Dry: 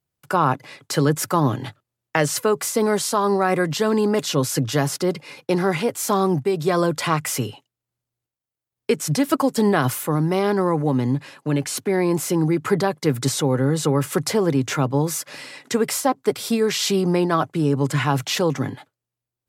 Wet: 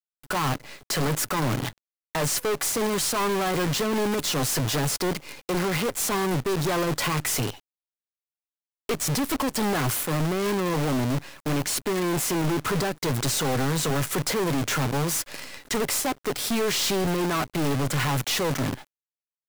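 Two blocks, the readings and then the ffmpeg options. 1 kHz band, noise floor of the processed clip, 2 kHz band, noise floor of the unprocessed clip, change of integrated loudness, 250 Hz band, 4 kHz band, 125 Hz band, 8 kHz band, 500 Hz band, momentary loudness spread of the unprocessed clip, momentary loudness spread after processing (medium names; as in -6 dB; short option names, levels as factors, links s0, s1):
-5.0 dB, under -85 dBFS, -1.5 dB, under -85 dBFS, -4.0 dB, -6.0 dB, 0.0 dB, -4.5 dB, 0.0 dB, -6.5 dB, 6 LU, 5 LU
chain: -af "aeval=exprs='(tanh(22.4*val(0)+0.15)-tanh(0.15))/22.4':c=same,acrusher=bits=6:dc=4:mix=0:aa=0.000001,volume=1.41"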